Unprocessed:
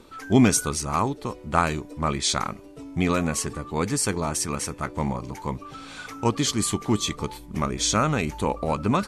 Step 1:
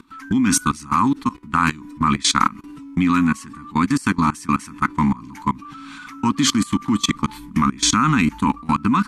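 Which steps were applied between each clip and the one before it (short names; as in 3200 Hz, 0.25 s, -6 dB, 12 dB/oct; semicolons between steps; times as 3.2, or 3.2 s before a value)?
EQ curve 120 Hz 0 dB, 270 Hz +14 dB, 380 Hz -7 dB, 580 Hz -24 dB, 1000 Hz +11 dB, 5300 Hz +2 dB; level quantiser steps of 21 dB; gain +5 dB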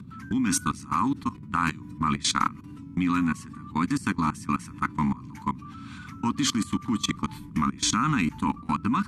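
band noise 74–240 Hz -36 dBFS; gain -7.5 dB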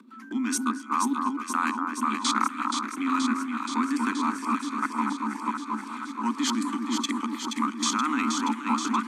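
rippled Chebyshev high-pass 220 Hz, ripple 3 dB; echo with dull and thin repeats by turns 0.238 s, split 1600 Hz, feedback 86%, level -4 dB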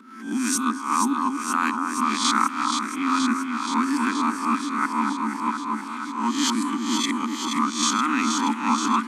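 spectral swells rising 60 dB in 0.50 s; gain +2 dB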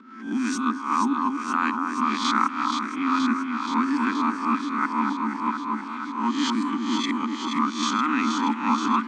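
air absorption 140 m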